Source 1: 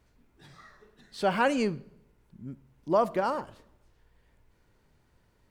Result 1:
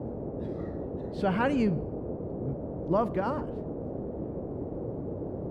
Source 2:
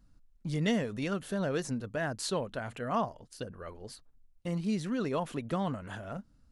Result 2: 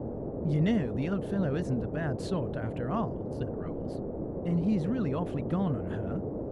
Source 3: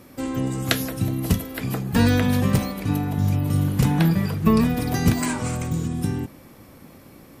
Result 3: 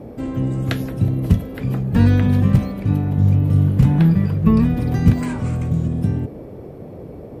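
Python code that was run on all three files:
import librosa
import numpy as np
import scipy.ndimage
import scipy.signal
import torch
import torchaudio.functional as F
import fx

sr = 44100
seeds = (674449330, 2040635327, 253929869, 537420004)

y = fx.bass_treble(x, sr, bass_db=11, treble_db=-10)
y = fx.dmg_noise_band(y, sr, seeds[0], low_hz=52.0, high_hz=530.0, level_db=-32.0)
y = y * librosa.db_to_amplitude(-3.5)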